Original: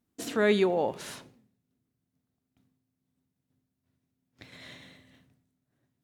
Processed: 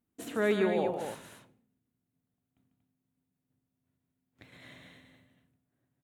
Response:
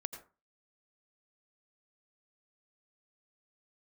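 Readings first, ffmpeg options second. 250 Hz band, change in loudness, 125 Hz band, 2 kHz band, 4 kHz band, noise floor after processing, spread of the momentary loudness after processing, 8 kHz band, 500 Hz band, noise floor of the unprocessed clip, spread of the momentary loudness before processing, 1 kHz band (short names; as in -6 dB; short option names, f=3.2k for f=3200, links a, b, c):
-2.5 dB, -4.0 dB, -2.5 dB, -3.0 dB, -6.5 dB, -85 dBFS, 14 LU, -6.0 dB, -3.0 dB, -83 dBFS, 18 LU, -3.0 dB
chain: -af "equalizer=f=5.1k:t=o:w=0.75:g=-10.5,aecho=1:1:145.8|236.2:0.398|0.447,volume=-4dB"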